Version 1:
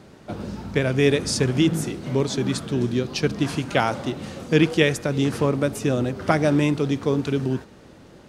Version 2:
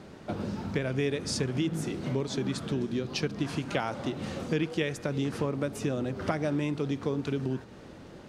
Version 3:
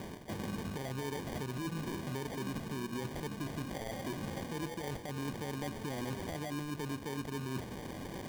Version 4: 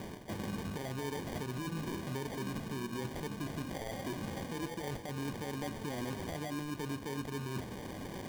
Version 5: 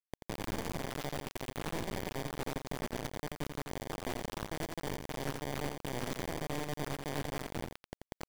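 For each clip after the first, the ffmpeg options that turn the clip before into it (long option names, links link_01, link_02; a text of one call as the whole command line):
ffmpeg -i in.wav -af "highshelf=frequency=7700:gain=-7,acompressor=threshold=-29dB:ratio=3,bandreject=frequency=60:width_type=h:width=6,bandreject=frequency=120:width_type=h:width=6" out.wav
ffmpeg -i in.wav -af "alimiter=limit=-23dB:level=0:latency=1,areverse,acompressor=threshold=-42dB:ratio=5,areverse,acrusher=samples=33:mix=1:aa=0.000001,volume=5dB" out.wav
ffmpeg -i in.wav -af "flanger=delay=9.2:depth=2.3:regen=-78:speed=0.41:shape=triangular,volume=4.5dB" out.wav
ffmpeg -i in.wav -af "acrusher=bits=3:dc=4:mix=0:aa=0.000001,aecho=1:1:86:0.473,volume=1.5dB" out.wav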